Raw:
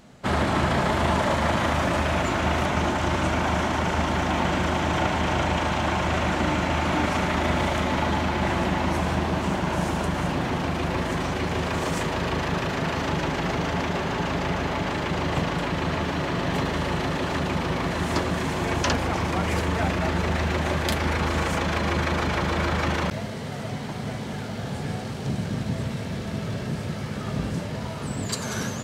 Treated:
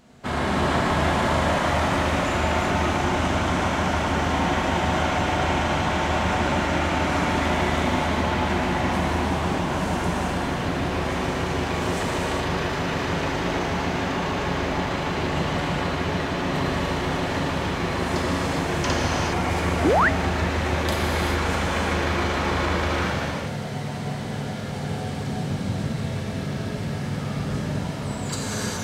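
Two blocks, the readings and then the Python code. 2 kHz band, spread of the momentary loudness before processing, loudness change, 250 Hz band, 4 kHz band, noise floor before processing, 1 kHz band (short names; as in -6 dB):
+1.5 dB, 7 LU, +1.5 dB, +1.0 dB, +1.5 dB, -32 dBFS, +1.5 dB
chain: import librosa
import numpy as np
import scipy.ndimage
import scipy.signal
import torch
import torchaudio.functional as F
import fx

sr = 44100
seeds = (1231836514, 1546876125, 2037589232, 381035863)

y = fx.rev_gated(x, sr, seeds[0], gate_ms=440, shape='flat', drr_db=-4.0)
y = fx.spec_paint(y, sr, seeds[1], shape='rise', start_s=19.84, length_s=0.25, low_hz=250.0, high_hz=2100.0, level_db=-14.0)
y = y * librosa.db_to_amplitude(-4.0)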